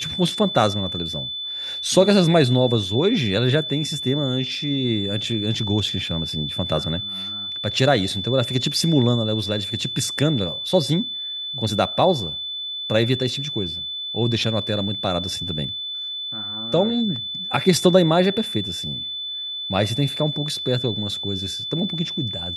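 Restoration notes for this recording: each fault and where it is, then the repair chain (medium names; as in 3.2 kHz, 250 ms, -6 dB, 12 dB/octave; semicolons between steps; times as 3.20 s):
whine 3.5 kHz -27 dBFS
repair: band-stop 3.5 kHz, Q 30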